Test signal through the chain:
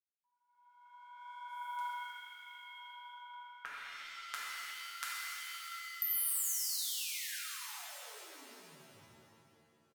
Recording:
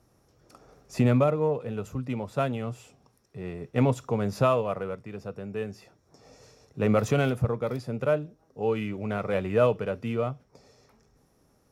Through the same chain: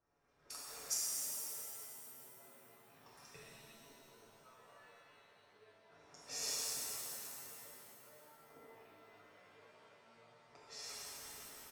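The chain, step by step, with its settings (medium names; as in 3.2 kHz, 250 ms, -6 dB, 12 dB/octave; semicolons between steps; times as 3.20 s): level rider gain up to 16 dB; peak limiter -10.5 dBFS; inverted gate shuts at -26 dBFS, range -32 dB; flange 0.73 Hz, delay 1.9 ms, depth 8.2 ms, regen -77%; pre-emphasis filter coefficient 0.97; comb 7 ms, depth 45%; level-controlled noise filter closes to 1.2 kHz, open at -52 dBFS; pitch-shifted reverb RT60 2.4 s, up +7 st, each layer -2 dB, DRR -6.5 dB; trim +5 dB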